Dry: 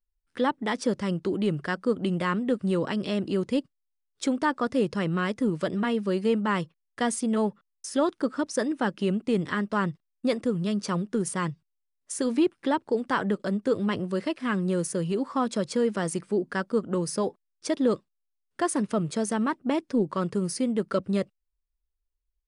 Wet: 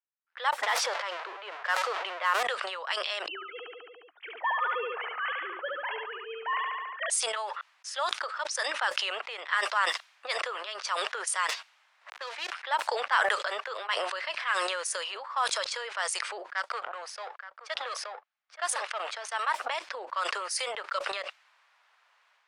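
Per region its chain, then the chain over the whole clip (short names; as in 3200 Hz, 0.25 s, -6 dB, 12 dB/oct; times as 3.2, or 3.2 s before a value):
0.63–2.43 zero-crossing step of -32.5 dBFS + tilt -3 dB/oct
3.28–7.1 sine-wave speech + LPF 1800 Hz 6 dB/oct + feedback echo 71 ms, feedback 54%, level -6 dB
11.49–12.54 switching dead time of 0.11 ms + notches 50/100/150/200 Hz
16.51–19.32 notch 1000 Hz, Q 11 + power-law curve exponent 1.4 + echo 0.875 s -14 dB
whole clip: Bessel high-pass 1200 Hz, order 8; low-pass opened by the level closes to 1600 Hz, open at -30 dBFS; sustainer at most 28 dB/s; gain +4.5 dB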